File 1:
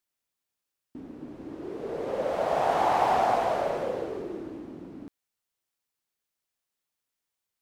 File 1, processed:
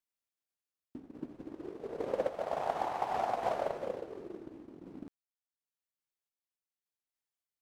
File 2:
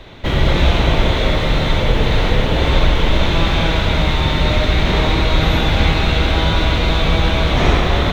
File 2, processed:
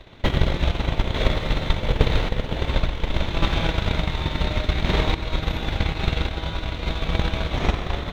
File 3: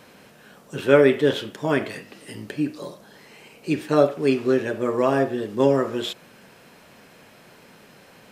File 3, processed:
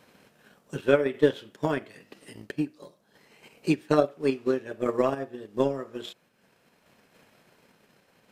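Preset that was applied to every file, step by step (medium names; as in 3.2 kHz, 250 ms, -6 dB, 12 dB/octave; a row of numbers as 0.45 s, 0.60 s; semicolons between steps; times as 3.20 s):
random-step tremolo; transient shaper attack +11 dB, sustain -6 dB; trim -7.5 dB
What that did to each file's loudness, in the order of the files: -9.5 LU, -8.5 LU, -6.0 LU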